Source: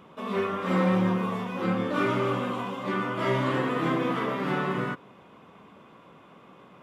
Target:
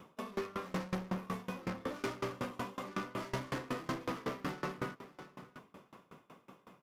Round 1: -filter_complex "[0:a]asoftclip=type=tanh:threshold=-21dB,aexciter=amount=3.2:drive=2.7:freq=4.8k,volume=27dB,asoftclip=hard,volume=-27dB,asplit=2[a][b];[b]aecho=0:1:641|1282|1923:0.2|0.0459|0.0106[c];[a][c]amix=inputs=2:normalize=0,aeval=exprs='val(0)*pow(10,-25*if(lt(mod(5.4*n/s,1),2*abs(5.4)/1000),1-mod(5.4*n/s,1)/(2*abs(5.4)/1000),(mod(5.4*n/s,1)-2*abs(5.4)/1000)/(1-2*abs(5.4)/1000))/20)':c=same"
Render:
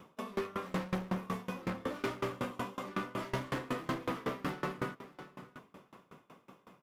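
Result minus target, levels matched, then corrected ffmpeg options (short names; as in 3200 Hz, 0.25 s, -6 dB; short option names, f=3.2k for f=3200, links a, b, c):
soft clip: distortion -8 dB
-filter_complex "[0:a]asoftclip=type=tanh:threshold=-29dB,aexciter=amount=3.2:drive=2.7:freq=4.8k,volume=27dB,asoftclip=hard,volume=-27dB,asplit=2[a][b];[b]aecho=0:1:641|1282|1923:0.2|0.0459|0.0106[c];[a][c]amix=inputs=2:normalize=0,aeval=exprs='val(0)*pow(10,-25*if(lt(mod(5.4*n/s,1),2*abs(5.4)/1000),1-mod(5.4*n/s,1)/(2*abs(5.4)/1000),(mod(5.4*n/s,1)-2*abs(5.4)/1000)/(1-2*abs(5.4)/1000))/20)':c=same"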